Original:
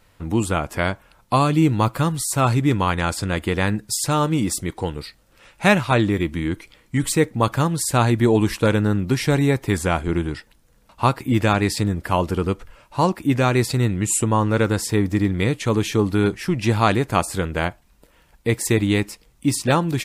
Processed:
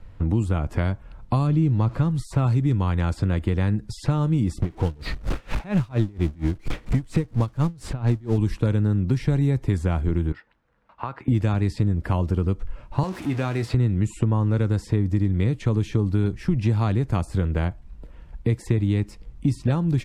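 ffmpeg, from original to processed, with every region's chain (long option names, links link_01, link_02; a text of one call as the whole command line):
ffmpeg -i in.wav -filter_complex "[0:a]asettb=1/sr,asplit=3[link_01][link_02][link_03];[link_01]atrim=end=1.474[link_04];[link_02]atrim=start=1.47:end=2.11,asetpts=PTS-STARTPTS,afade=type=in:duration=0.004:curve=qsin,afade=type=out:start_time=0.636:duration=0.004:curve=qsin,aeval=exprs='val(0)+0.5*0.0211*sgn(val(0))':channel_layout=same,aemphasis=mode=reproduction:type=50fm[link_05];[link_03]atrim=start=2.106[link_06];[link_04][link_05]acrossfade=duration=0.004:curve1=hsin:curve2=qsin[link_07];[link_07][link_06]acrossfade=duration=0.004:curve1=qsin:curve2=hsin,asettb=1/sr,asplit=3[link_08][link_09][link_10];[link_08]atrim=end=4.624[link_11];[link_09]atrim=start=4.62:end=8.38,asetpts=PTS-STARTPTS,afade=type=in:duration=0.004:curve=qsin,afade=type=out:start_time=3.756:duration=0.004:curve=qsin,aeval=exprs='val(0)+0.5*0.1*sgn(val(0))':channel_layout=same,aeval=exprs='val(0)*pow(10,-29*(0.5-0.5*cos(2*PI*4.3*n/s))/20)':channel_layout=same[link_12];[link_10]atrim=start=8.376[link_13];[link_11][link_12]acrossfade=duration=0.004:curve1=hsin:curve2=qsin[link_14];[link_14][link_13]acrossfade=duration=0.004:curve1=qsin:curve2=hsin,asettb=1/sr,asplit=3[link_15][link_16][link_17];[link_15]atrim=end=10.324[link_18];[link_16]atrim=start=10.32:end=11.28,asetpts=PTS-STARTPTS,afade=type=in:duration=0.004:curve=qsin,afade=type=out:start_time=0.956:duration=0.004:curve=qsin,bandpass=frequency=1400:width_type=q:width=1,acompressor=threshold=-25dB:ratio=2:attack=3.2:release=140:knee=1:detection=peak[link_19];[link_17]atrim=start=11.276[link_20];[link_18][link_19]acrossfade=duration=0.004:curve1=hsin:curve2=qsin[link_21];[link_21][link_20]acrossfade=duration=0.004:curve1=qsin:curve2=hsin,asettb=1/sr,asplit=3[link_22][link_23][link_24];[link_22]atrim=end=13.034[link_25];[link_23]atrim=start=13.03:end=13.74,asetpts=PTS-STARTPTS,afade=type=in:duration=0.004:curve=qsin,afade=type=out:start_time=0.706:duration=0.004:curve=qsin,aeval=exprs='val(0)+0.5*0.0631*sgn(val(0))':channel_layout=same,highpass=frequency=780:poles=1,asplit=2[link_26][link_27];[link_27]adelay=27,volume=-12.5dB[link_28];[link_26][link_28]amix=inputs=2:normalize=0,atrim=end_sample=31311[link_29];[link_24]atrim=start=13.736[link_30];[link_25][link_29]acrossfade=duration=0.004:curve1=hsin:curve2=qsin[link_31];[link_31][link_30]acrossfade=duration=0.004:curve1=qsin:curve2=hsin,aemphasis=mode=reproduction:type=riaa,acrossover=split=190|4400[link_32][link_33][link_34];[link_32]acompressor=threshold=-23dB:ratio=4[link_35];[link_33]acompressor=threshold=-27dB:ratio=4[link_36];[link_34]acompressor=threshold=-47dB:ratio=4[link_37];[link_35][link_36][link_37]amix=inputs=3:normalize=0" out.wav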